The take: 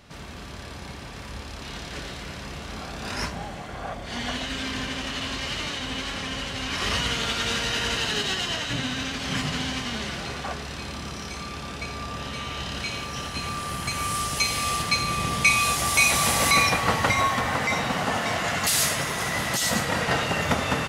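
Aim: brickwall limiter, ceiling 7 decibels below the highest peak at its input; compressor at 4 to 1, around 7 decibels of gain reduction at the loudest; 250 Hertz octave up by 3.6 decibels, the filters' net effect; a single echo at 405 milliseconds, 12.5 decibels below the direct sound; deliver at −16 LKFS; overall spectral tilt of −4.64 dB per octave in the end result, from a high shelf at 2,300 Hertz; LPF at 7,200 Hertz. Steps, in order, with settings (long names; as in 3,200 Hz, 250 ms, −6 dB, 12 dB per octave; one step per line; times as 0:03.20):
low-pass filter 7,200 Hz
parametric band 250 Hz +4.5 dB
high-shelf EQ 2,300 Hz −8.5 dB
downward compressor 4 to 1, threshold −27 dBFS
brickwall limiter −22 dBFS
single-tap delay 405 ms −12.5 dB
level +16.5 dB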